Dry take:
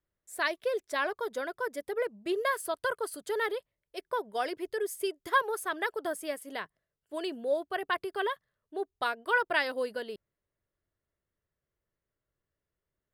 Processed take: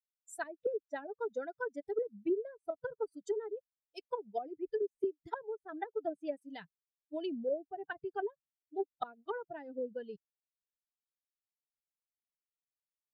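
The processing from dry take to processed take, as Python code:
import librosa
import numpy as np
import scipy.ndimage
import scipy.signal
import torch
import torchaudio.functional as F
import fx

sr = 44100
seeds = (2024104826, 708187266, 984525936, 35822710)

y = fx.bin_expand(x, sr, power=2.0)
y = fx.env_lowpass_down(y, sr, base_hz=340.0, full_db=-33.0)
y = fx.notch_comb(y, sr, f0_hz=1100.0)
y = y * librosa.db_to_amplitude(5.0)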